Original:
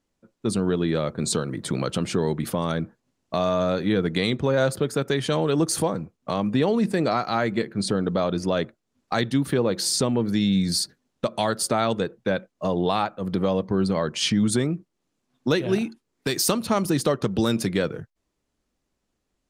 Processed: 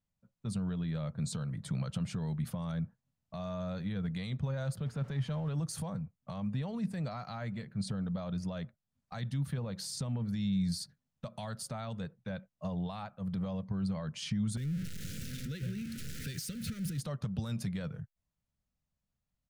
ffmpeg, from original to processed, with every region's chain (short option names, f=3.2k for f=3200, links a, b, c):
-filter_complex "[0:a]asettb=1/sr,asplit=3[a][b][c];[a]atrim=end=4.864[d];[b]atrim=start=4.86:end=5.54,asetpts=PTS-STARTPTS,afade=t=in:d=0.004:c=qsin,afade=t=out:st=0.676:d=0.004:c=qsin,aeval=exprs='val(0)+0.5*0.0178*sgn(val(0))':c=same,aemphasis=mode=reproduction:type=75fm[e];[c]atrim=start=5.536[f];[d][e]acrossfade=d=0.004:c1=hsin:c2=qsin[g];[g][f]acrossfade=d=0.004:c1=qsin:c2=hsin,asettb=1/sr,asplit=3[h][i][j];[h]atrim=end=14.574[k];[i]atrim=start=14.57:end=17,asetpts=PTS-STARTPTS,afade=t=in:d=0.004:c=qsin,afade=t=out:st=2.426:d=0.004:c=qsin,aeval=exprs='val(0)+0.5*0.075*sgn(val(0))':c=same,acompressor=threshold=-24dB:ratio=5:attack=3.2:release=140:knee=1:detection=peak,asuperstop=centerf=850:order=12:qfactor=0.98[l];[j]atrim=start=16.996[m];[k][l]acrossfade=d=0.004:c1=hsin:c2=qsin[n];[n][m]acrossfade=d=0.004:c1=qsin:c2=hsin,lowshelf=f=61:g=-8,alimiter=limit=-16.5dB:level=0:latency=1:release=25,firequalizer=gain_entry='entry(150,0);entry(330,-25);entry(580,-13)':delay=0.05:min_phase=1,volume=-1.5dB"